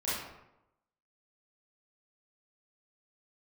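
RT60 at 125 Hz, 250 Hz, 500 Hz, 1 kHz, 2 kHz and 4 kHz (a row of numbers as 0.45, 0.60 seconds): 0.95, 0.90, 0.90, 0.90, 0.70, 0.55 seconds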